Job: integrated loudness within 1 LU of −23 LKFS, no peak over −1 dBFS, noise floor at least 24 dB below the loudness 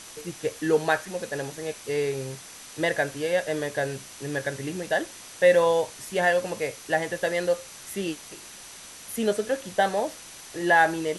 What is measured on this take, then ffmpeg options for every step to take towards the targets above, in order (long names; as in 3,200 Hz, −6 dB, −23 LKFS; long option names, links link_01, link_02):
interfering tone 6,000 Hz; level of the tone −51 dBFS; background noise floor −44 dBFS; target noise floor −51 dBFS; integrated loudness −26.5 LKFS; sample peak −7.5 dBFS; target loudness −23.0 LKFS
→ -af "bandreject=frequency=6000:width=30"
-af "afftdn=noise_reduction=7:noise_floor=-44"
-af "volume=3.5dB"